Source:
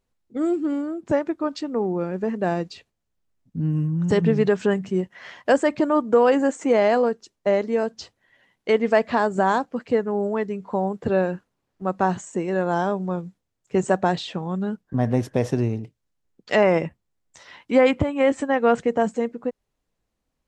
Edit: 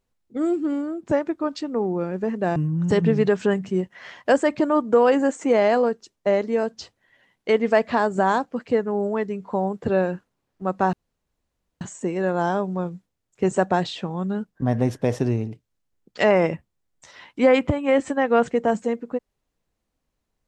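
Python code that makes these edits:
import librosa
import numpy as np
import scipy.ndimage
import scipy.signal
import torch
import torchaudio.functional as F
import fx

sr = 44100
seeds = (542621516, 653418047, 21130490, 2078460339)

y = fx.edit(x, sr, fx.cut(start_s=2.56, length_s=1.2),
    fx.insert_room_tone(at_s=12.13, length_s=0.88), tone=tone)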